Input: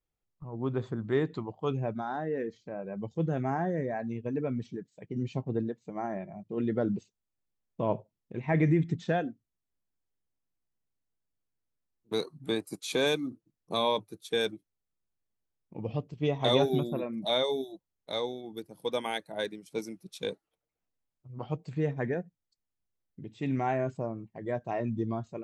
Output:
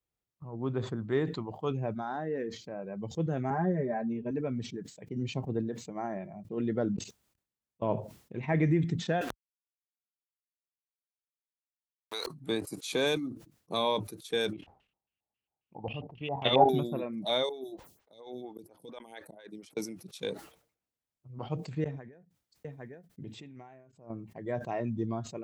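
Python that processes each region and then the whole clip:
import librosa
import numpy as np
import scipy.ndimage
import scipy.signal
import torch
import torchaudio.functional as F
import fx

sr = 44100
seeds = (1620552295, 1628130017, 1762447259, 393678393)

y = fx.chain(x, sr, fx.lowpass(hz=1500.0, slope=6),
    fx.comb(ms=5.0, depth=0.99), at=(3.5, 4.31))
y = fx.chain(y, sr, fx.level_steps(step_db=21),
    fx.auto_swell(attack_ms=131.0), at=(6.96, 7.82))
y = fx.chain(y, sr, fx.highpass(hz=930.0, slope=12),
    fx.sample_gate(floor_db=-55.5),
    fx.env_flatten(amount_pct=100), at=(9.21, 12.27))
y = fx.chain(y, sr, fx.high_shelf(hz=9300.0, db=11.5),
    fx.level_steps(step_db=12),
    fx.filter_lfo_lowpass(shape='square', hz=3.7, low_hz=810.0, high_hz=2800.0, q=7.9), at=(14.53, 16.69))
y = fx.chain(y, sr, fx.over_compress(threshold_db=-36.0, ratio=-1.0),
    fx.auto_swell(attack_ms=351.0),
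    fx.stagger_phaser(hz=4.3), at=(17.49, 19.77))
y = fx.chain(y, sr, fx.echo_single(ms=805, db=-20.0),
    fx.over_compress(threshold_db=-43.0, ratio=-1.0),
    fx.tremolo_abs(hz=1.2), at=(21.84, 24.1))
y = scipy.signal.sosfilt(scipy.signal.butter(2, 49.0, 'highpass', fs=sr, output='sos'), y)
y = fx.sustainer(y, sr, db_per_s=120.0)
y = y * 10.0 ** (-1.5 / 20.0)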